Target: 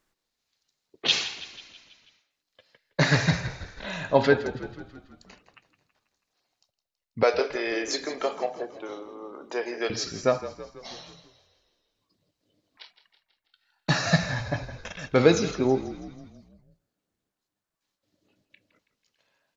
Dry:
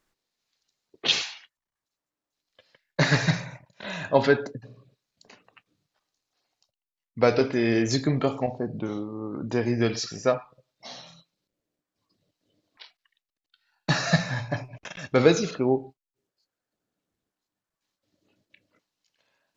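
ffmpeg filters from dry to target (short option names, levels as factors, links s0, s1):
-filter_complex "[0:a]asettb=1/sr,asplit=3[s0][s1][s2];[s0]atrim=end=7.234[s3];[s1]atrim=start=7.23:end=9.9,asetpts=PTS-STARTPTS,afade=t=in:d=0.004:c=qsin,afade=t=out:st=2.666:d=0.004:c=qsin,highpass=f=420:w=0.5412,highpass=f=420:w=1.3066[s4];[s2]atrim=start=9.896[s5];[s3][s4]acrossfade=d=0.004:c1=hsin:c2=qsin[s6];[s6][s5]acrossfade=d=0.004:c1=qsin:c2=hsin,asplit=7[s7][s8][s9][s10][s11][s12][s13];[s8]adelay=163,afreqshift=-39,volume=0.2[s14];[s9]adelay=326,afreqshift=-78,volume=0.114[s15];[s10]adelay=489,afreqshift=-117,volume=0.0646[s16];[s11]adelay=652,afreqshift=-156,volume=0.0372[s17];[s12]adelay=815,afreqshift=-195,volume=0.0211[s18];[s13]adelay=978,afreqshift=-234,volume=0.012[s19];[s7][s14][s15][s16][s17][s18][s19]amix=inputs=7:normalize=0"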